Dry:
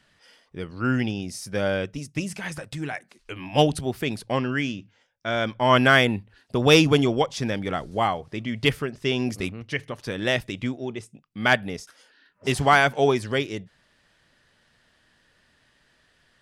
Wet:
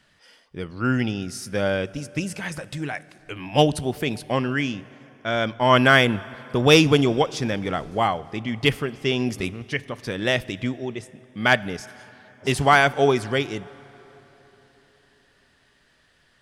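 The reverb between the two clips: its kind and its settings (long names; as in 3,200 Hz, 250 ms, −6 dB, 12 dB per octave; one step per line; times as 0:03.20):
dense smooth reverb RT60 3.9 s, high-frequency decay 0.65×, DRR 19 dB
level +1.5 dB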